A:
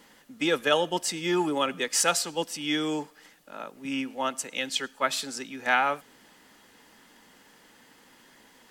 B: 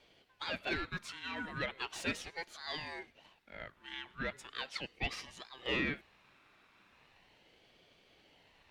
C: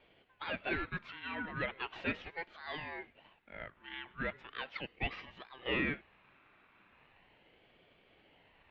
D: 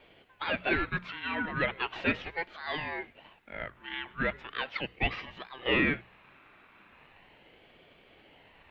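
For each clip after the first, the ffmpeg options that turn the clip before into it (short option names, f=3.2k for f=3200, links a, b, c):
-filter_complex "[0:a]asoftclip=type=tanh:threshold=-20.5dB,acrossover=split=580 3500:gain=0.0708 1 0.112[a][b][c];[a][b][c]amix=inputs=3:normalize=0,aeval=exprs='val(0)*sin(2*PI*1000*n/s+1000*0.4/0.38*sin(2*PI*0.38*n/s))':c=same,volume=-2.5dB"
-af "lowpass=f=3k:w=0.5412,lowpass=f=3k:w=1.3066,volume=1dB"
-af "bandreject=f=60:t=h:w=6,bandreject=f=120:t=h:w=6,bandreject=f=180:t=h:w=6,volume=7.5dB"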